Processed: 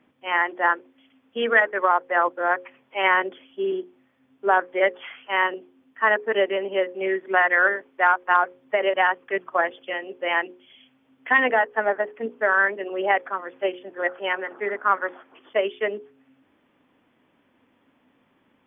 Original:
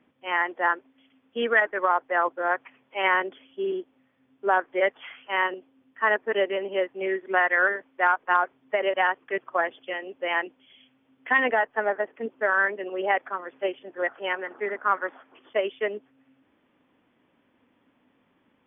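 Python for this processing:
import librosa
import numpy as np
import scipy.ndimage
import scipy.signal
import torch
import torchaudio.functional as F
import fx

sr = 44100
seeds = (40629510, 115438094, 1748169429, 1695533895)

y = fx.hum_notches(x, sr, base_hz=60, count=9)
y = F.gain(torch.from_numpy(y), 3.0).numpy()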